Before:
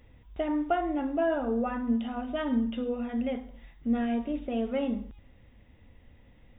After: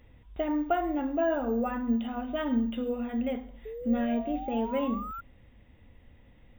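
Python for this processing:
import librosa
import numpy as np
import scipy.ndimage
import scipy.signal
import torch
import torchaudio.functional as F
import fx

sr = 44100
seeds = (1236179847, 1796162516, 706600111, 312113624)

y = fx.spec_paint(x, sr, seeds[0], shape='rise', start_s=3.65, length_s=1.56, low_hz=430.0, high_hz=1400.0, level_db=-39.0)
y = np.repeat(scipy.signal.resample_poly(y, 1, 2), 2)[:len(y)]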